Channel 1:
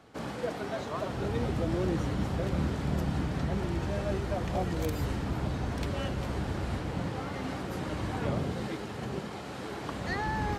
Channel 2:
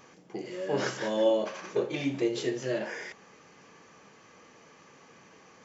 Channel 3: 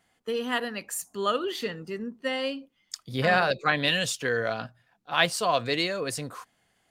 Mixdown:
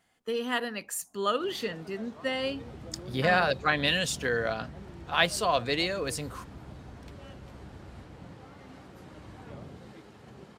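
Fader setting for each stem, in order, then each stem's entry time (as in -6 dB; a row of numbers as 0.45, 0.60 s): -13.5 dB, off, -1.5 dB; 1.25 s, off, 0.00 s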